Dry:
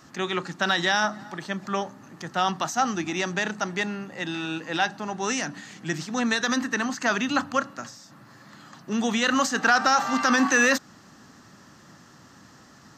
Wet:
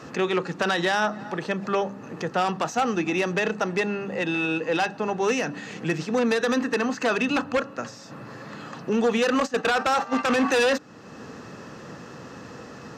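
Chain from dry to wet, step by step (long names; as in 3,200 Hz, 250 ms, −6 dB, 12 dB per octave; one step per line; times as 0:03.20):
high-shelf EQ 8,800 Hz −9.5 dB
hum removal 99.46 Hz, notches 3
hollow resonant body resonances 470/2,600 Hz, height 13 dB, ringing for 35 ms
downward compressor 1.5 to 1, threshold −45 dBFS, peak gain reduction 12 dB
high-shelf EQ 2,400 Hz −5 dB
0:09.40–0:10.42: noise gate −33 dBFS, range −12 dB
sine wavefolder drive 8 dB, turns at −17 dBFS
harmonic generator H 3 −24 dB, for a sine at −16.5 dBFS
high-pass filter 50 Hz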